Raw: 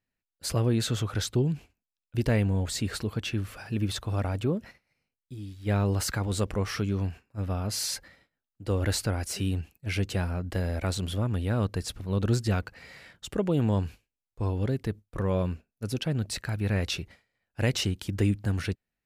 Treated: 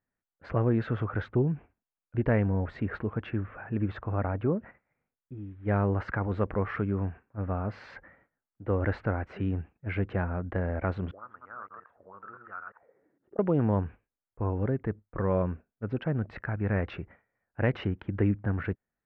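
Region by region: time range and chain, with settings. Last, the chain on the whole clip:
11.11–13.39 reverse delay 0.115 s, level -4.5 dB + auto-wah 250–1300 Hz, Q 7, up, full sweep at -25 dBFS
whole clip: Wiener smoothing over 9 samples; LPF 1800 Hz 24 dB/oct; tilt +1.5 dB/oct; gain +3 dB

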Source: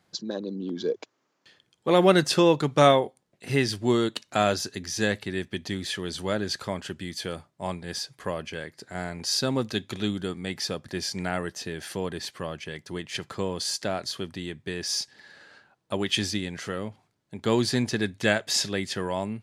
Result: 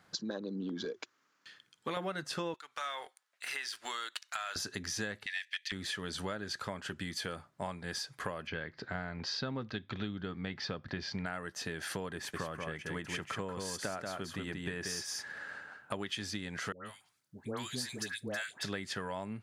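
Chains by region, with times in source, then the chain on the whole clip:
0.85–1.97 HPF 270 Hz 6 dB/oct + bell 640 Hz -9.5 dB 1.7 oct
2.54–4.56 HPF 1400 Hz + sample leveller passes 1 + compressor 2.5:1, threshold -38 dBFS
5.26–5.72 Chebyshev high-pass 1700 Hz, order 6 + bell 2900 Hz +10.5 dB 2.2 oct + Doppler distortion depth 0.92 ms
8.47–11.26 LPF 4600 Hz 24 dB/oct + low shelf 190 Hz +6.5 dB
12.15–15.93 bell 4300 Hz -8.5 dB + echo 0.184 s -4.5 dB
16.72–18.63 pre-emphasis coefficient 0.8 + dispersion highs, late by 0.137 s, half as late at 1100 Hz
whole clip: bell 1400 Hz +7.5 dB 0.95 oct; notch 360 Hz, Q 12; compressor 8:1, threshold -36 dBFS; gain +1 dB

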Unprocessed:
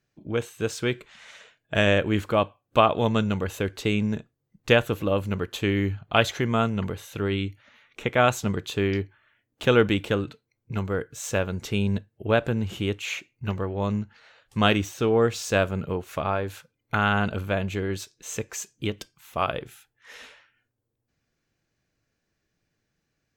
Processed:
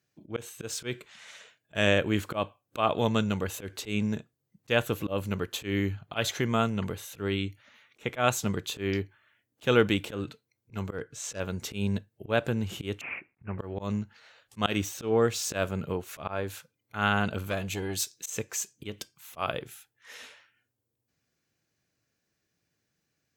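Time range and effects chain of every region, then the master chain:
10.98–11.4 hard clip -20 dBFS + air absorption 55 m
13.01–13.59 CVSD 32 kbps + steep low-pass 2500 Hz 72 dB/oct
17.46–18.3 high shelf 3400 Hz +9 dB + core saturation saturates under 590 Hz
whole clip: HPF 76 Hz 12 dB/oct; high shelf 4900 Hz +7.5 dB; auto swell 0.118 s; gain -3 dB

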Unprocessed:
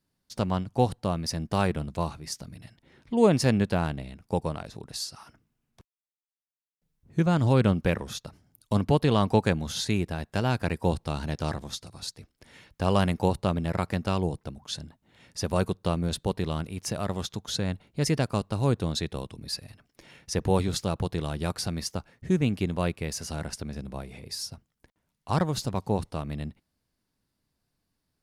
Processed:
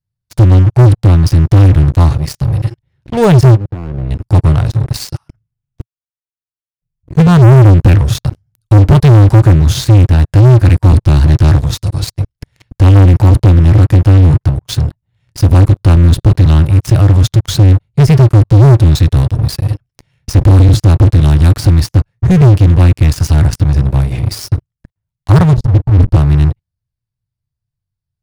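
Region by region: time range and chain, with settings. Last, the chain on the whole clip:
3.54–4.11 LPF 1400 Hz + hard clip -20.5 dBFS + level quantiser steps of 23 dB
25.53–26.15 tilt -3.5 dB/oct + auto swell 0.318 s
whole clip: de-esser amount 70%; resonant low shelf 170 Hz +13.5 dB, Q 3; sample leveller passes 5; gain -3 dB

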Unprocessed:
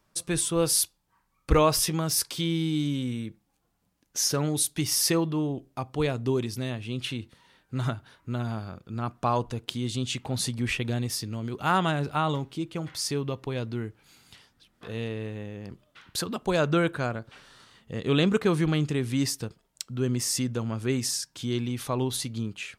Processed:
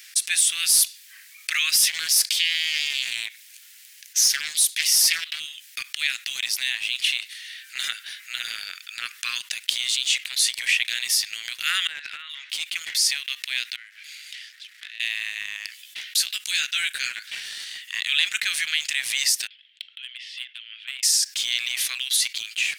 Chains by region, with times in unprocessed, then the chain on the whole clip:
1.86–5.4 HPF 110 Hz 24 dB/oct + Doppler distortion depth 0.46 ms
11.87–12.5 negative-ratio compressor -31 dBFS, ratio -0.5 + tape spacing loss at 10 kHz 31 dB
13.76–15 half-wave gain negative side -12 dB + LPF 2400 Hz 6 dB/oct + compressor 4:1, threshold -50 dBFS
15.67–17.2 passive tone stack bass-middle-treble 10-0-10 + doubler 15 ms -5 dB
19.47–21.03 band-pass 3200 Hz, Q 5.4 + air absorption 470 m
whole clip: steep high-pass 1800 Hz 48 dB/oct; sample leveller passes 1; fast leveller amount 50%; gain +3.5 dB

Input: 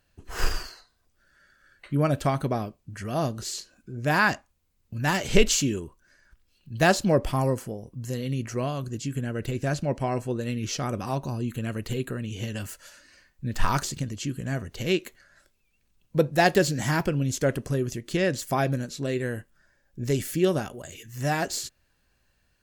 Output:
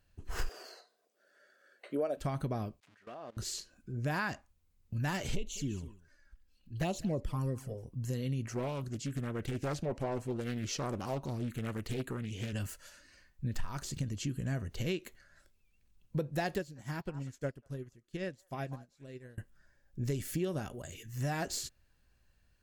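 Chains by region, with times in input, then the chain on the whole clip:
0.49–2.17 HPF 260 Hz 24 dB/oct + band shelf 540 Hz +10.5 dB 1.1 oct
2.8–3.37 switching spikes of -27 dBFS + BPF 460–2400 Hz + level quantiser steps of 20 dB
5.35–7.85 envelope flanger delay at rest 3.9 ms, full sweep at -16.5 dBFS + echo 0.2 s -23 dB
8.48–12.53 low shelf 180 Hz -6.5 dB + Doppler distortion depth 0.53 ms
16.56–19.38 delay with a stepping band-pass 0.192 s, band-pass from 970 Hz, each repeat 1.4 oct, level -7 dB + upward expander 2.5:1, over -35 dBFS
whole clip: low shelf 130 Hz +8.5 dB; compressor 10:1, threshold -24 dBFS; gain -6 dB

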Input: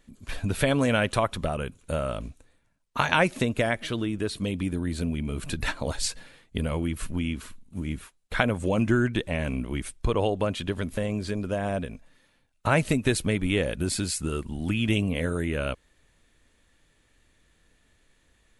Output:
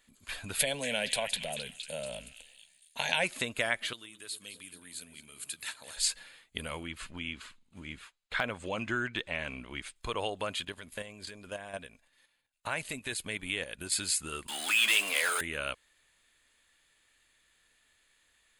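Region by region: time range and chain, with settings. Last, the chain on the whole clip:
0.59–3.24 transient shaper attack 0 dB, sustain +9 dB + fixed phaser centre 330 Hz, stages 6 + delay with a stepping band-pass 0.233 s, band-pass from 2300 Hz, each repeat 0.7 oct, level -5.5 dB
3.93–5.97 HPF 100 Hz + pre-emphasis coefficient 0.8 + echo with dull and thin repeats by turns 0.107 s, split 1200 Hz, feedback 65%, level -10 dB
6.83–9.96 LPF 5500 Hz + de-esser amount 85%
10.64–13.92 notch 1300 Hz, Q 14 + level quantiser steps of 9 dB
14.48–15.41 HPF 800 Hz + power-law curve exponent 0.5 + doubler 14 ms -12.5 dB
whole clip: tilt shelf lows -9.5 dB, about 650 Hz; notch 5700 Hz, Q 6.4; gain -8 dB

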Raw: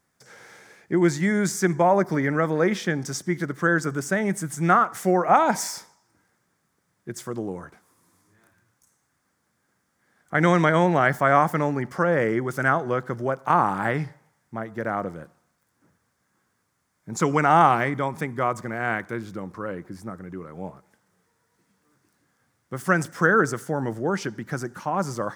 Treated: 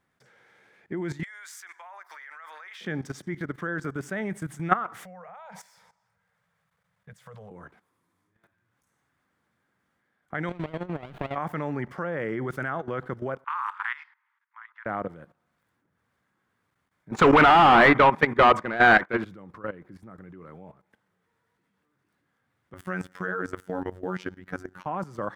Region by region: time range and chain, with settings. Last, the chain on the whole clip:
1.23–2.81 HPF 1000 Hz 24 dB/oct + high shelf 4500 Hz +5 dB + compressor 5:1, threshold -30 dBFS
5.04–7.51 Chebyshev band-stop 190–470 Hz, order 3 + compressor 2.5:1, threshold -37 dBFS
10.49–11.36 compressor 16:1, threshold -25 dBFS + transient shaper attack +6 dB, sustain -2 dB + running maximum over 17 samples
13.44–14.86 steep high-pass 960 Hz 72 dB/oct + low-pass opened by the level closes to 2200 Hz, open at -18 dBFS
17.11–19.25 expander -31 dBFS + overdrive pedal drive 29 dB, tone 1700 Hz, clips at -3.5 dBFS
22.74–24.86 robotiser 91.9 Hz + companded quantiser 8-bit
whole clip: resonant high shelf 4300 Hz -8.5 dB, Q 1.5; level quantiser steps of 15 dB

